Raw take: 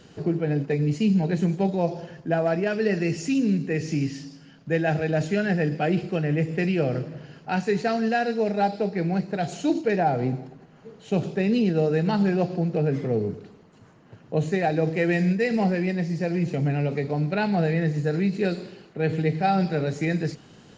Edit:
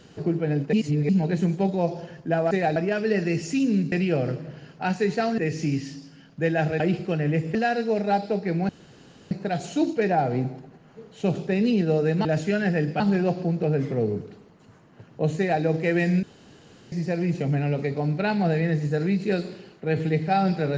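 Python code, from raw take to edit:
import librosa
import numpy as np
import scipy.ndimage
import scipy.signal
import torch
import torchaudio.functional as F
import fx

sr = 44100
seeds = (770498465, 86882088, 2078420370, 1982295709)

y = fx.edit(x, sr, fx.reverse_span(start_s=0.73, length_s=0.36),
    fx.move(start_s=5.09, length_s=0.75, to_s=12.13),
    fx.move(start_s=6.59, length_s=1.46, to_s=3.67),
    fx.insert_room_tone(at_s=9.19, length_s=0.62),
    fx.duplicate(start_s=14.51, length_s=0.25, to_s=2.51),
    fx.room_tone_fill(start_s=15.36, length_s=0.69), tone=tone)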